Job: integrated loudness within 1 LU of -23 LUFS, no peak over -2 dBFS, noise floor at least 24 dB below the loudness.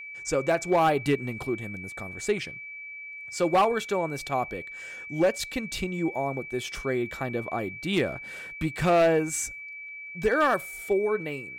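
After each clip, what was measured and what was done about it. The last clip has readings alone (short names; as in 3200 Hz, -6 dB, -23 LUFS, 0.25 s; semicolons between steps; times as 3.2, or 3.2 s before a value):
clipped 0.7%; flat tops at -16.0 dBFS; steady tone 2300 Hz; tone level -38 dBFS; loudness -27.5 LUFS; peak -16.0 dBFS; loudness target -23.0 LUFS
-> clip repair -16 dBFS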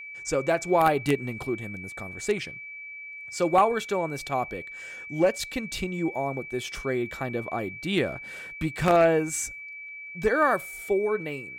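clipped 0.0%; steady tone 2300 Hz; tone level -38 dBFS
-> notch 2300 Hz, Q 30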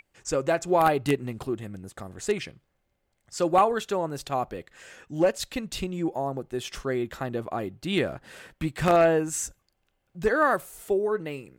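steady tone none; loudness -27.0 LUFS; peak -7.0 dBFS; loudness target -23.0 LUFS
-> gain +4 dB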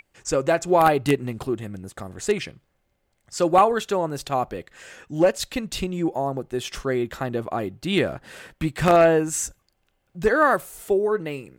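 loudness -23.0 LUFS; peak -3.0 dBFS; noise floor -71 dBFS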